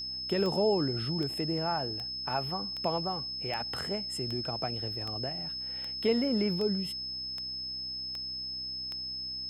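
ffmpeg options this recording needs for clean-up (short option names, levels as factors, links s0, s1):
-af "adeclick=t=4,bandreject=f=64.3:t=h:w=4,bandreject=f=128.6:t=h:w=4,bandreject=f=192.9:t=h:w=4,bandreject=f=257.2:t=h:w=4,bandreject=f=321.5:t=h:w=4,bandreject=f=5200:w=30"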